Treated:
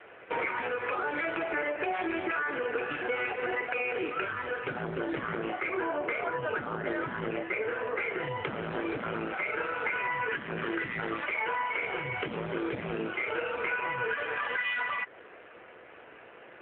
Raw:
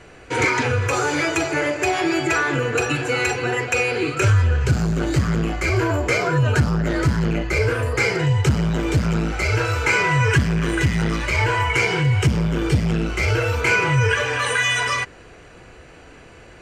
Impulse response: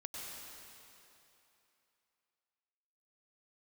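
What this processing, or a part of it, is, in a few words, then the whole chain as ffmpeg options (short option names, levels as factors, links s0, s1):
voicemail: -af "highpass=420,lowpass=2600,acompressor=threshold=0.0447:ratio=6" -ar 8000 -c:a libopencore_amrnb -b:a 7400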